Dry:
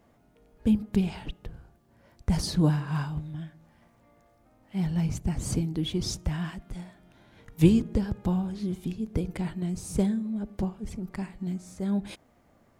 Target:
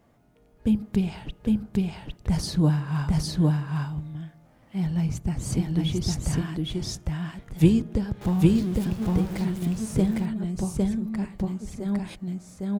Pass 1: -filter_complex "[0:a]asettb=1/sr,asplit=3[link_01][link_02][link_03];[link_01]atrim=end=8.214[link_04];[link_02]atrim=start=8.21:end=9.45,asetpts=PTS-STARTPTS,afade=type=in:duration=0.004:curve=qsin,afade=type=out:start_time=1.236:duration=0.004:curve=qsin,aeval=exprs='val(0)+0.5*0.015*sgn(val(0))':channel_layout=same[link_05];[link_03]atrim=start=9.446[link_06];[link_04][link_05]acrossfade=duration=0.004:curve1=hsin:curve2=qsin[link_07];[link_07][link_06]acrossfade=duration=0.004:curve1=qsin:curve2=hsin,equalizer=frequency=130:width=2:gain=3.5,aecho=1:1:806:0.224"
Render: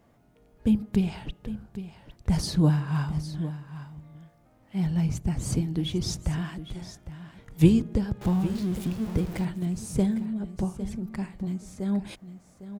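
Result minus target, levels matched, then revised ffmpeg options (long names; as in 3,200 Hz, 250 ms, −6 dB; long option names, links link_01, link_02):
echo-to-direct −12 dB
-filter_complex "[0:a]asettb=1/sr,asplit=3[link_01][link_02][link_03];[link_01]atrim=end=8.214[link_04];[link_02]atrim=start=8.21:end=9.45,asetpts=PTS-STARTPTS,afade=type=in:duration=0.004:curve=qsin,afade=type=out:start_time=1.236:duration=0.004:curve=qsin,aeval=exprs='val(0)+0.5*0.015*sgn(val(0))':channel_layout=same[link_05];[link_03]atrim=start=9.446[link_06];[link_04][link_05]acrossfade=duration=0.004:curve1=hsin:curve2=qsin[link_07];[link_07][link_06]acrossfade=duration=0.004:curve1=qsin:curve2=hsin,equalizer=frequency=130:width=2:gain=3.5,aecho=1:1:806:0.891"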